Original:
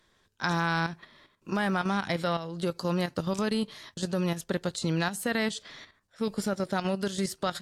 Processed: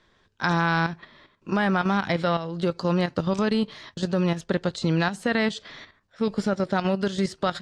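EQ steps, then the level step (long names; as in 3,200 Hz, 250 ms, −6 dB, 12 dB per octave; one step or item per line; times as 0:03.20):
high-frequency loss of the air 110 metres
+5.5 dB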